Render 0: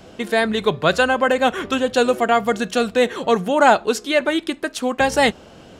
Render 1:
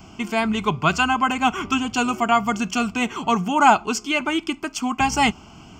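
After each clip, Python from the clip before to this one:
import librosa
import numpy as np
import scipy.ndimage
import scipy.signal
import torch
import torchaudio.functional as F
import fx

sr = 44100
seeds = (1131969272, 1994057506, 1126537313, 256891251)

y = fx.fixed_phaser(x, sr, hz=2600.0, stages=8)
y = y * 10.0 ** (3.0 / 20.0)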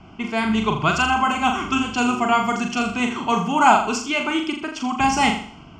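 y = fx.env_lowpass(x, sr, base_hz=2600.0, full_db=-14.5)
y = fx.room_flutter(y, sr, wall_m=7.0, rt60_s=0.49)
y = y * 10.0 ** (-1.0 / 20.0)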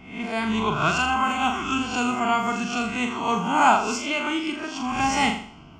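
y = fx.spec_swells(x, sr, rise_s=0.56)
y = y * 10.0 ** (-5.0 / 20.0)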